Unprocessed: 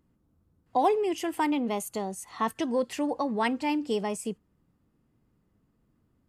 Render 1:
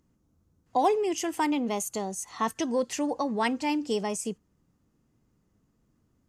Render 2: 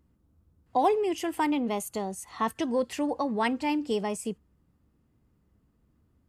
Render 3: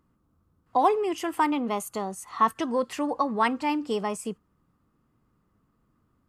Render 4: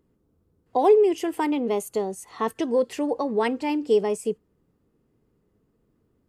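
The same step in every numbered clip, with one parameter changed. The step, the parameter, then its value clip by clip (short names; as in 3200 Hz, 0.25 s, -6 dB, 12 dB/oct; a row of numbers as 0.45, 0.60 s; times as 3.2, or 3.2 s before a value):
bell, frequency: 6300, 66, 1200, 430 Hz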